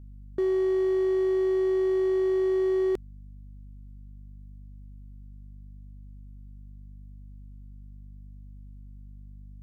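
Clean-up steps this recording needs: clip repair -22 dBFS; de-hum 49.6 Hz, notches 5

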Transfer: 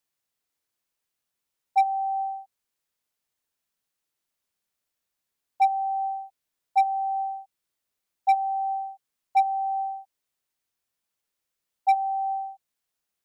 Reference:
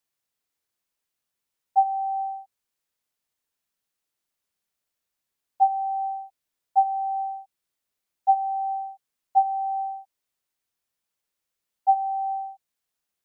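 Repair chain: clip repair -14.5 dBFS

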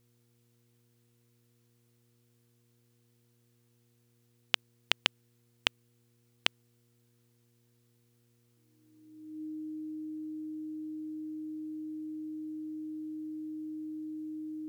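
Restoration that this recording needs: de-hum 118.6 Hz, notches 4; notch 310 Hz, Q 30

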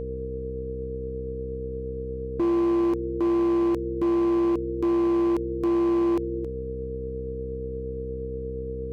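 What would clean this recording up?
clip repair -20 dBFS; de-hum 64.5 Hz, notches 8; notch 460 Hz, Q 30

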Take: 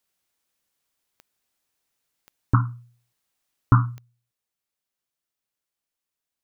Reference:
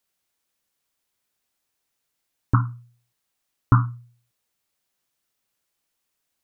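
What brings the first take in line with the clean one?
de-click; gain 0 dB, from 3.98 s +9 dB

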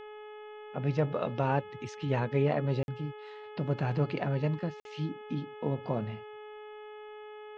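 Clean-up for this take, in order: de-hum 423.7 Hz, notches 8; interpolate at 2.83/4.8, 51 ms

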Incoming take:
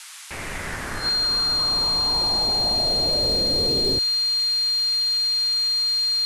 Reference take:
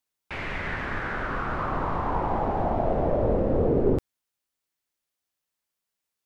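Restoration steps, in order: clip repair -15.5 dBFS; notch 4200 Hz, Q 30; noise print and reduce 30 dB; gain correction +5 dB, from 1.09

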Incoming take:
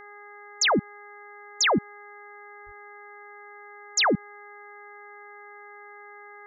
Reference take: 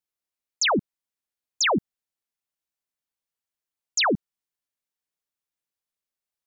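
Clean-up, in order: de-hum 411.5 Hz, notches 5; 2.65–2.77 HPF 140 Hz 24 dB/oct

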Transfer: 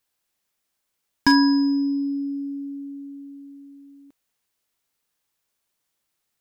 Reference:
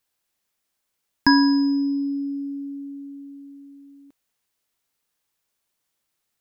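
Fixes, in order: clip repair -8.5 dBFS

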